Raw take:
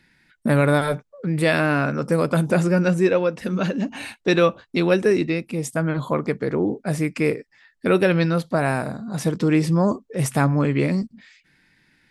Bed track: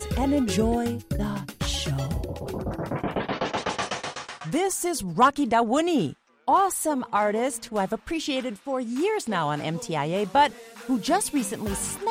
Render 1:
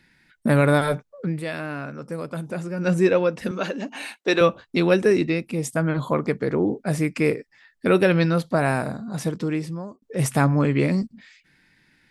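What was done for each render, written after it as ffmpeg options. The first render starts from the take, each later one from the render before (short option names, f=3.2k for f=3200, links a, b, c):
-filter_complex "[0:a]asettb=1/sr,asplit=3[a][b][c];[a]atrim=end=3.514[d];[b]atrim=start=3.51:end=4.41,asetpts=PTS-STARTPTS,afade=t=in:d=0.004:c=qsin,afade=t=out:st=0.896:d=0.004:c=qsin,highpass=330[e];[c]atrim=start=4.406[f];[d][e]acrossfade=d=0.004:c1=hsin:c2=qsin[g];[g][f]acrossfade=d=0.004:c1=qsin:c2=hsin,asplit=4[h][i][j][k];[h]atrim=end=1.41,asetpts=PTS-STARTPTS,afade=t=out:st=1.25:d=0.16:silence=0.281838[l];[i]atrim=start=1.41:end=2.77,asetpts=PTS-STARTPTS,volume=-11dB[m];[j]atrim=start=2.77:end=10.02,asetpts=PTS-STARTPTS,afade=t=in:d=0.16:silence=0.281838,afade=t=out:st=6.15:d=1.1[n];[k]atrim=start=10.02,asetpts=PTS-STARTPTS,afade=t=in:d=0.004:c=hsin[o];[l][m][n][o]concat=n=4:v=0:a=1"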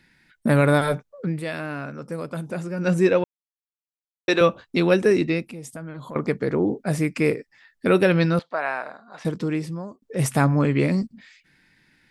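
-filter_complex "[0:a]asettb=1/sr,asplit=3[a][b][c];[a]atrim=end=5.474[d];[b]atrim=start=5.47:end=6.16,asetpts=PTS-STARTPTS,afade=t=in:d=0.004:c=qsin,afade=t=out:st=0.686:d=0.004:c=qsin,acompressor=threshold=-37dB:ratio=3:attack=3.2:release=140:knee=1:detection=peak[e];[c]atrim=start=6.156[f];[d][e]acrossfade=d=0.004:c1=hsin:c2=qsin[g];[g][f]acrossfade=d=0.004:c1=qsin:c2=hsin,asettb=1/sr,asplit=3[h][i][j];[h]atrim=end=8.394[k];[i]atrim=start=8.39:end=9.25,asetpts=PTS-STARTPTS,afade=t=in:d=0.004:c=qsin,afade=t=out:st=0.856:d=0.004:c=qsin,highpass=770,lowpass=2.9k[l];[j]atrim=start=9.246[m];[k][l]acrossfade=d=0.004:c1=hsin:c2=qsin[n];[n][m]acrossfade=d=0.004:c1=qsin:c2=hsin,asplit=3[o][p][q];[o]atrim=end=3.24,asetpts=PTS-STARTPTS,afade=t=out:st=3.236:d=0.004:c=hsin[r];[p]atrim=start=3.24:end=4.28,asetpts=PTS-STARTPTS,volume=0[s];[q]atrim=start=4.28,asetpts=PTS-STARTPTS,afade=t=in:d=0.004:c=hsin[t];[r][s][t]concat=n=3:v=0:a=1"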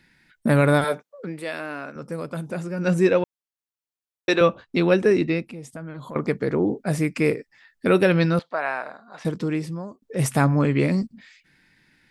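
-filter_complex "[0:a]asettb=1/sr,asplit=3[a][b][c];[a]atrim=end=0.844[d];[b]atrim=start=0.84:end=1.96,asetpts=PTS-STARTPTS,afade=t=in:d=0.004:c=qsin,afade=t=out:st=1.116:d=0.004:c=qsin,highpass=290[e];[c]atrim=start=1.956[f];[d][e]acrossfade=d=0.004:c1=hsin:c2=qsin[g];[g][f]acrossfade=d=0.004:c1=qsin:c2=hsin,asettb=1/sr,asplit=3[h][i][j];[h]atrim=end=4.354[k];[i]atrim=start=4.35:end=5.9,asetpts=PTS-STARTPTS,afade=t=in:d=0.004:c=qsin,afade=t=out:st=1.546:d=0.004:c=qsin,highshelf=f=7.1k:g=-10[l];[j]atrim=start=5.896[m];[k][l]acrossfade=d=0.004:c1=hsin:c2=qsin[n];[n][m]acrossfade=d=0.004:c1=qsin:c2=hsin"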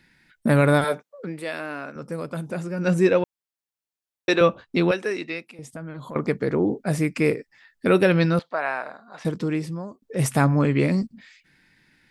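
-filter_complex "[0:a]asettb=1/sr,asplit=3[a][b][c];[a]atrim=end=4.914[d];[b]atrim=start=4.91:end=5.59,asetpts=PTS-STARTPTS,afade=t=in:d=0.004:c=qsin,afade=t=out:st=0.676:d=0.004:c=qsin,highpass=f=1.1k:p=1[e];[c]atrim=start=5.586[f];[d][e]acrossfade=d=0.004:c1=hsin:c2=qsin[g];[g][f]acrossfade=d=0.004:c1=qsin:c2=hsin"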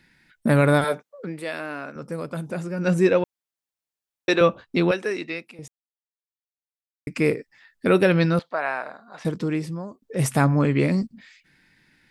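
-filter_complex "[0:a]asplit=3[a][b][c];[a]atrim=end=5.68,asetpts=PTS-STARTPTS,afade=t=out:st=5.676:d=0.004:c=hsin[d];[b]atrim=start=5.68:end=7.07,asetpts=PTS-STARTPTS,volume=0[e];[c]atrim=start=7.07,asetpts=PTS-STARTPTS,afade=t=in:d=0.004:c=hsin[f];[d][e][f]concat=n=3:v=0:a=1"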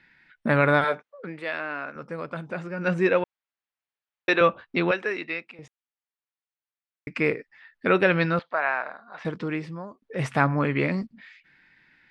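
-af "lowpass=2.3k,tiltshelf=f=800:g=-6.5"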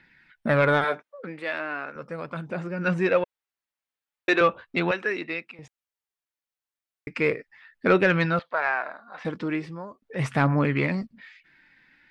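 -af "aphaser=in_gain=1:out_gain=1:delay=4:decay=0.3:speed=0.38:type=triangular,asoftclip=type=tanh:threshold=-8dB"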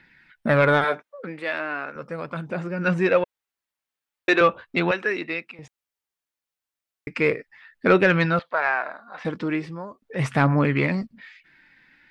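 -af "volume=2.5dB"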